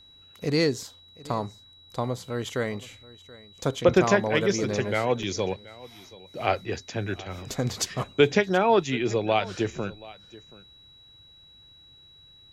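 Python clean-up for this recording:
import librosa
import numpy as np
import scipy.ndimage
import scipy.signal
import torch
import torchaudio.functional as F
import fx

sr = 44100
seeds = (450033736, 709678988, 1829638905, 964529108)

y = fx.notch(x, sr, hz=3900.0, q=30.0)
y = fx.fix_interpolate(y, sr, at_s=(2.18, 5.23), length_ms=1.7)
y = fx.fix_echo_inverse(y, sr, delay_ms=729, level_db=-20.5)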